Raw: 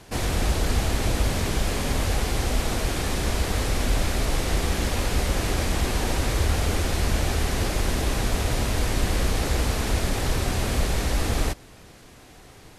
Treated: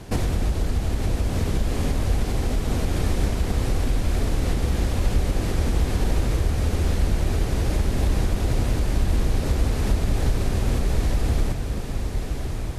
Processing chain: low shelf 500 Hz +10 dB; compressor 6:1, threshold -21 dBFS, peak gain reduction 13 dB; on a send: diffused feedback echo 1.125 s, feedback 68%, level -7 dB; on the sum: gain +1.5 dB

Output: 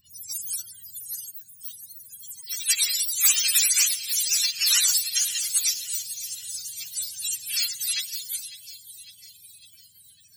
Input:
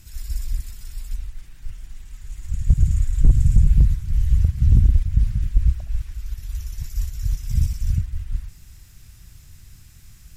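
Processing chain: spectrum mirrored in octaves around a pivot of 580 Hz; band shelf 570 Hz -15.5 dB 1.3 oct; on a send: thin delay 0.552 s, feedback 59%, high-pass 2600 Hz, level -13 dB; on the sum: spectral noise reduction 17 dB

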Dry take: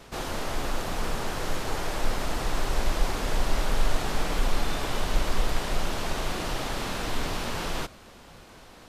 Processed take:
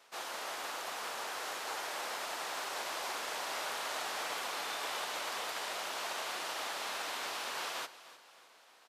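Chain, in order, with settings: HPF 710 Hz 12 dB/oct; feedback echo 0.306 s, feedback 52%, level -12 dB; upward expander 1.5:1, over -47 dBFS; gain -3.5 dB

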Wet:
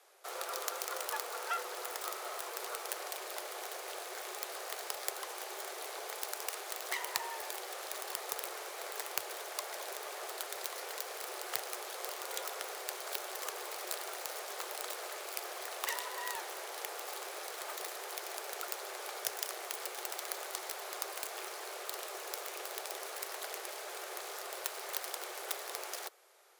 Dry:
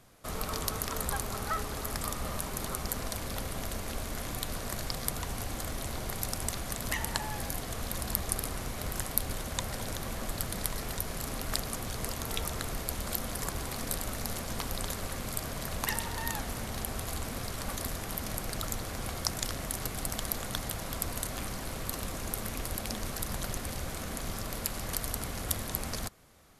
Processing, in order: self-modulated delay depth 0.64 ms; steep high-pass 290 Hz 96 dB/oct; one-sided clip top -14 dBFS; frequency shift +74 Hz; gain -2 dB

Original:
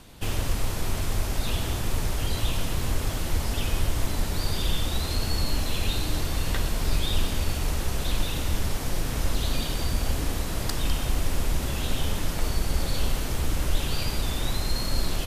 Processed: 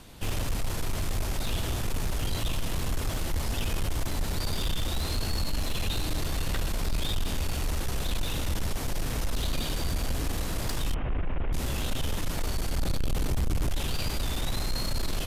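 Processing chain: 10.94–11.53 delta modulation 16 kbps, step -41.5 dBFS; 12.78–13.7 low shelf 490 Hz +6.5 dB; soft clip -22 dBFS, distortion -10 dB

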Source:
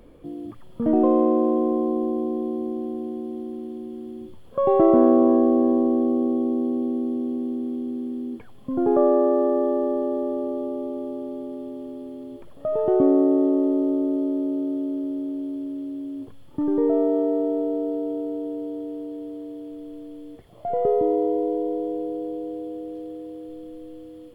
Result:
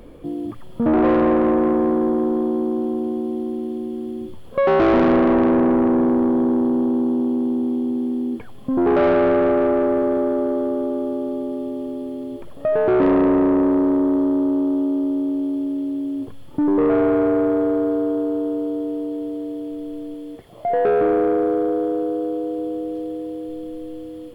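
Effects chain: 20.14–22.58 low shelf 110 Hz -9 dB; soft clip -20 dBFS, distortion -10 dB; gain +7.5 dB

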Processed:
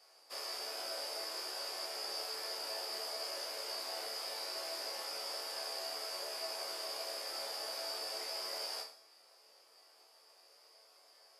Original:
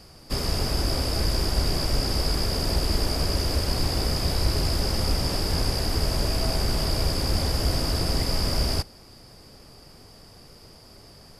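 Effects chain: HPF 510 Hz 24 dB/oct; resonator bank D2 major, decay 0.49 s; gain +2.5 dB

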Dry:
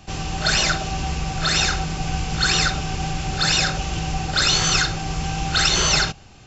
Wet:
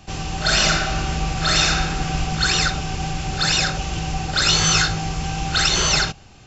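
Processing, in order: 0.43–2.19 reverb throw, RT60 1.4 s, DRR 1 dB; 4.44–5.09 doubler 19 ms -4 dB

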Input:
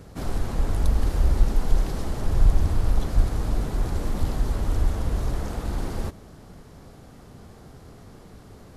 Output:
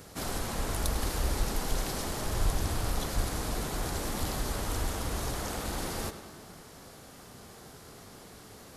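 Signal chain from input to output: tilt +2.5 dB/oct; tape echo 0.103 s, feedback 71%, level -10.5 dB, low-pass 5000 Hz

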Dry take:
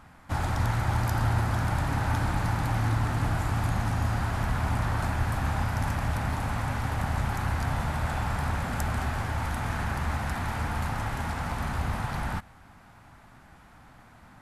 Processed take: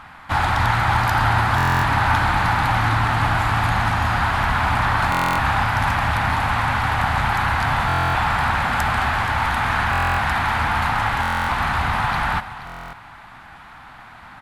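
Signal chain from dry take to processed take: band shelf 1800 Hz +10.5 dB 2.8 oct; echo 0.476 s -14 dB; reverb RT60 0.60 s, pre-delay 57 ms, DRR 19 dB; stuck buffer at 1.56/5.1/7.87/9.91/11.21/12.65, samples 1024, times 11; gain +4 dB

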